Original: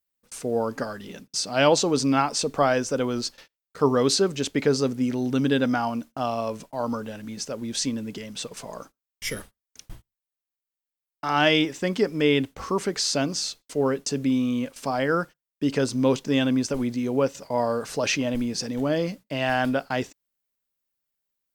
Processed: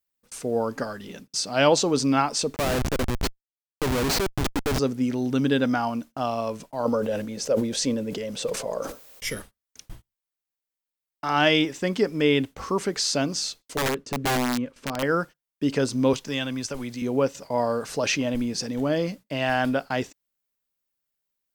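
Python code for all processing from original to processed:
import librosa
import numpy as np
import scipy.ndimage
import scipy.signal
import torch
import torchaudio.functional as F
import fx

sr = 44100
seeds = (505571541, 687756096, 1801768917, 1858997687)

y = fx.chain(x, sr, fx.high_shelf(hz=5300.0, db=5.0),
    fx.schmitt(flips_db=-22.0), at=(2.56, 4.79))
y = fx.chain(y, sr, fx.peak_eq(hz=520.0, db=13.0, octaves=0.6),
    fx.sustainer(db_per_s=57.0), at=(6.85, 9.25))
y = fx.chain(y, sr, fx.lowpass(hz=1300.0, slope=6),
    fx.peak_eq(hz=740.0, db=-8.0, octaves=0.47),
    fx.overflow_wrap(gain_db=19.5), at=(13.77, 15.03))
y = fx.chain(y, sr, fx.peak_eq(hz=270.0, db=-9.0, octaves=2.8),
    fx.band_squash(depth_pct=40), at=(16.13, 17.02))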